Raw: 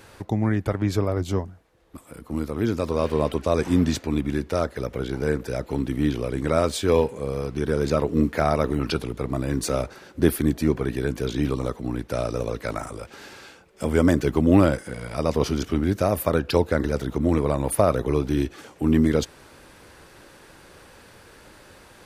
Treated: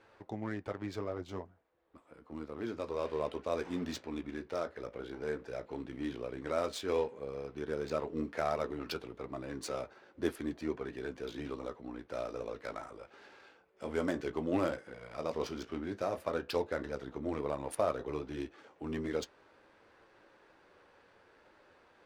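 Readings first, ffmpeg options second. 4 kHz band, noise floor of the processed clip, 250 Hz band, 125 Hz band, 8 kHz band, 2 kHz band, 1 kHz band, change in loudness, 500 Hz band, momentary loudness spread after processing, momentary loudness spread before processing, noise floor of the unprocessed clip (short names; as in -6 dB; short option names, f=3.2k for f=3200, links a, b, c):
-12.0 dB, -65 dBFS, -16.5 dB, -22.0 dB, -16.0 dB, -11.5 dB, -11.0 dB, -14.0 dB, -12.0 dB, 11 LU, 10 LU, -50 dBFS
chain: -af "flanger=delay=8.8:depth=9.9:regen=-48:speed=0.1:shape=triangular,adynamicsmooth=sensitivity=7:basefreq=2.5k,bass=f=250:g=-12,treble=f=4k:g=3,volume=-7dB"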